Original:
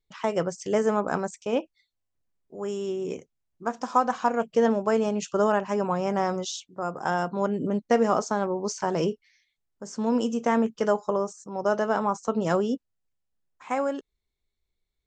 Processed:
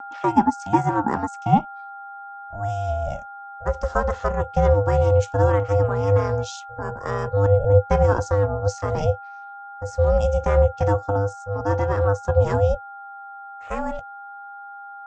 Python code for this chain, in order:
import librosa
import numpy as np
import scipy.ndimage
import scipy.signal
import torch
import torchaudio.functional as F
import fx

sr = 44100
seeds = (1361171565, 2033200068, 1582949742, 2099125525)

y = x + 10.0 ** (-33.0 / 20.0) * np.sin(2.0 * np.pi * 1100.0 * np.arange(len(x)) / sr)
y = fx.filter_sweep_highpass(y, sr, from_hz=560.0, to_hz=200.0, start_s=0.86, end_s=4.37, q=7.1)
y = fx.vibrato(y, sr, rate_hz=0.43, depth_cents=6.0)
y = y * np.sin(2.0 * np.pi * 300.0 * np.arange(len(y)) / sr)